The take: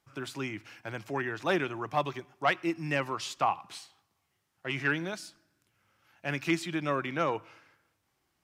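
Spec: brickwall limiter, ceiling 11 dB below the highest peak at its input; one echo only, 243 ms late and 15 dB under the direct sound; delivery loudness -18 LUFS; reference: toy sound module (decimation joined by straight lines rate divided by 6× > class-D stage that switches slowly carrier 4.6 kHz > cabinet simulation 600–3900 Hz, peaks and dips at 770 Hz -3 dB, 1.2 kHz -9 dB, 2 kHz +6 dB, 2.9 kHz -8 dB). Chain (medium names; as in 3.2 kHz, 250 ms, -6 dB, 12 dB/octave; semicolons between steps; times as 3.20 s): peak limiter -24 dBFS; delay 243 ms -15 dB; decimation joined by straight lines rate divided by 6×; class-D stage that switches slowly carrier 4.6 kHz; cabinet simulation 600–3900 Hz, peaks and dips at 770 Hz -3 dB, 1.2 kHz -9 dB, 2 kHz +6 dB, 2.9 kHz -8 dB; trim +25.5 dB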